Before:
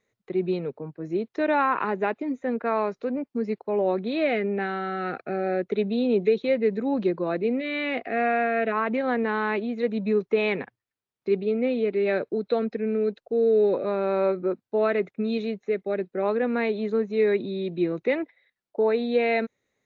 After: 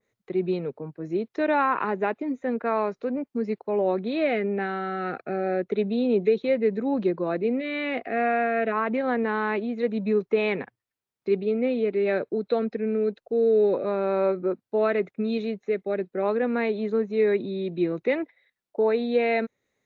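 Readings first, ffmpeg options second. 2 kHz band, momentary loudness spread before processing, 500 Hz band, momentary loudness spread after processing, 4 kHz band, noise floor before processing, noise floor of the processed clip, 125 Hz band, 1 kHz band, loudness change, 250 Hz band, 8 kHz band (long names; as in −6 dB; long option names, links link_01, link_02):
−1.0 dB, 7 LU, 0.0 dB, 7 LU, −2.0 dB, below −85 dBFS, below −85 dBFS, 0.0 dB, 0.0 dB, 0.0 dB, 0.0 dB, can't be measured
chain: -af "adynamicequalizer=threshold=0.00794:dfrequency=2200:dqfactor=0.7:tfrequency=2200:tqfactor=0.7:attack=5:release=100:ratio=0.375:range=1.5:mode=cutabove:tftype=highshelf"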